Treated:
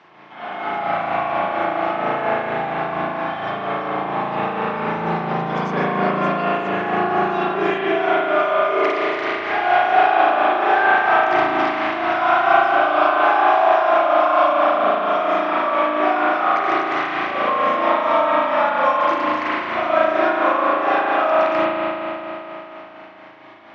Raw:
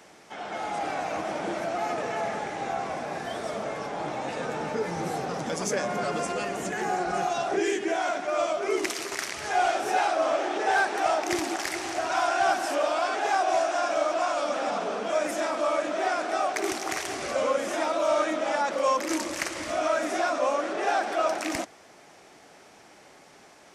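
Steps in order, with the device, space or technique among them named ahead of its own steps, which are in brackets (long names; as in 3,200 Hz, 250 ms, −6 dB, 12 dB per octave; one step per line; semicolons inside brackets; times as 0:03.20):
combo amplifier with spring reverb and tremolo (spring reverb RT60 3.5 s, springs 36 ms, chirp 70 ms, DRR −9 dB; amplitude tremolo 4.3 Hz, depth 38%; loudspeaker in its box 96–3,800 Hz, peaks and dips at 260 Hz −3 dB, 490 Hz −7 dB, 1,100 Hz +6 dB)
level +1.5 dB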